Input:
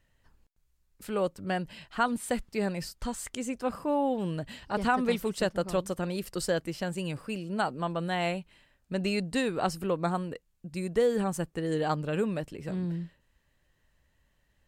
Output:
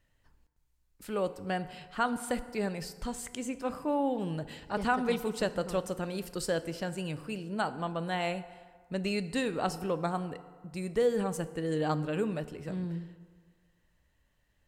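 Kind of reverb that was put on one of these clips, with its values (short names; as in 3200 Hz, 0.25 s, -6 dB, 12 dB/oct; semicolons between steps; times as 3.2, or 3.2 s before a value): FDN reverb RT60 1.7 s, low-frequency decay 0.9×, high-frequency decay 0.55×, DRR 12 dB; gain -2.5 dB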